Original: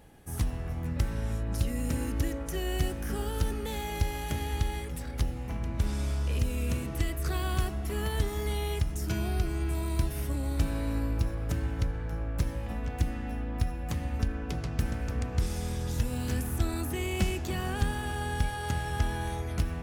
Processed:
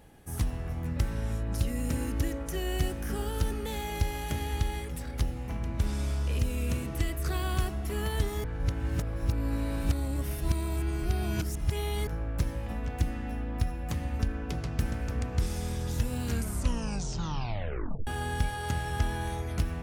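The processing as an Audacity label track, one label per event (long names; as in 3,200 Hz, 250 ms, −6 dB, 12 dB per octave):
8.440000	12.070000	reverse
16.220000	16.220000	tape stop 1.85 s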